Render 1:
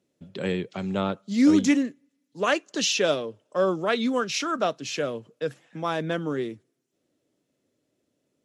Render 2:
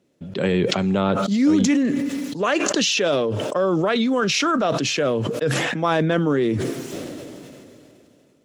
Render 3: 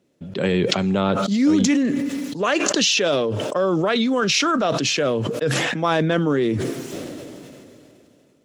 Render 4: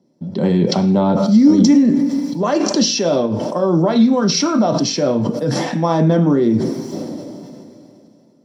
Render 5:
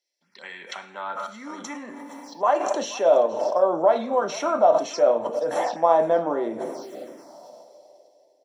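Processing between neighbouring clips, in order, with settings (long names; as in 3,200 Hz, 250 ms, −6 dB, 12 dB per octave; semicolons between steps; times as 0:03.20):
in parallel at +1.5 dB: compressor whose output falls as the input rises −27 dBFS, ratio −0.5; on the sum: high-shelf EQ 4,300 Hz −5.5 dB; level that may fall only so fast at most 21 dB per second
dynamic equaliser 4,700 Hz, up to +3 dB, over −35 dBFS, Q 0.75
convolution reverb RT60 0.40 s, pre-delay 3 ms, DRR 5.5 dB; level −8.5 dB
phaser swept by the level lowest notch 200 Hz, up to 4,900 Hz, full sweep at −15 dBFS; high-pass filter sweep 2,000 Hz → 650 Hz, 0:00.43–0:02.88; single-tap delay 476 ms −19.5 dB; level −4.5 dB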